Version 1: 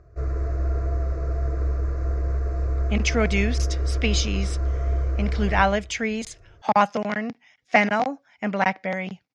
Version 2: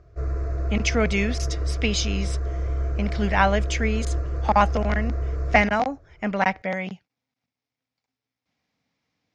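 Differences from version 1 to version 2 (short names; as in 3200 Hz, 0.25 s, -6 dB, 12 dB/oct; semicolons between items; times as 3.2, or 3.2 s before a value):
speech: entry -2.20 s; background: send -8.0 dB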